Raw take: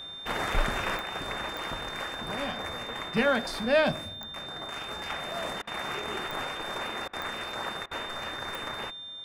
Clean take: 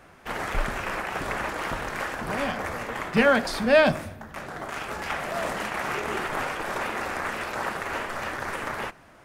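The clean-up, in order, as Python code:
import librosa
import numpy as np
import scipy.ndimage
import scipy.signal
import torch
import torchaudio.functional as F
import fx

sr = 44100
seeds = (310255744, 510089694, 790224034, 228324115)

y = fx.fix_declick_ar(x, sr, threshold=10.0)
y = fx.notch(y, sr, hz=3600.0, q=30.0)
y = fx.fix_interpolate(y, sr, at_s=(5.62, 7.08, 7.86), length_ms=51.0)
y = fx.fix_level(y, sr, at_s=0.97, step_db=5.5)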